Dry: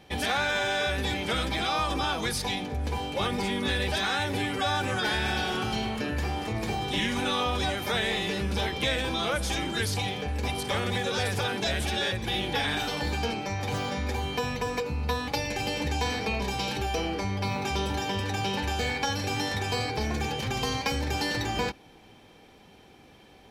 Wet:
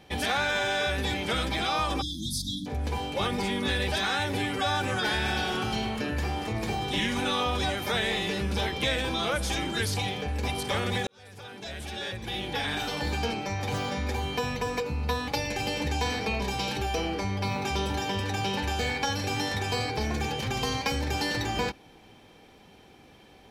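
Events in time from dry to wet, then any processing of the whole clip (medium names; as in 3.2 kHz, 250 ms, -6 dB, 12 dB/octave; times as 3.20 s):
2.02–2.67 s: spectral selection erased 330–3200 Hz
11.07–13.14 s: fade in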